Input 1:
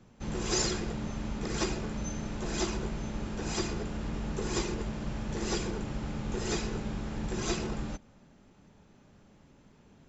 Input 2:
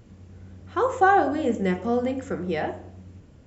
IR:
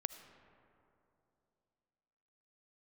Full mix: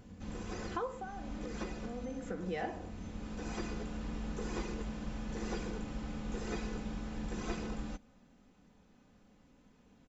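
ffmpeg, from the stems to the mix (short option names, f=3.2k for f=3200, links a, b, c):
-filter_complex "[0:a]acrossover=split=2500[a][b];[b]acompressor=threshold=-46dB:ratio=4:attack=1:release=60[c];[a][c]amix=inputs=2:normalize=0,volume=-6dB[d];[1:a]acompressor=threshold=-30dB:ratio=6,volume=8.5dB,afade=t=out:st=0.72:d=0.33:silence=0.237137,afade=t=in:st=1.89:d=0.74:silence=0.237137,asplit=2[e][f];[f]apad=whole_len=444604[g];[d][g]sidechaincompress=threshold=-47dB:ratio=8:attack=8.1:release=534[h];[h][e]amix=inputs=2:normalize=0,aecho=1:1:4:0.45"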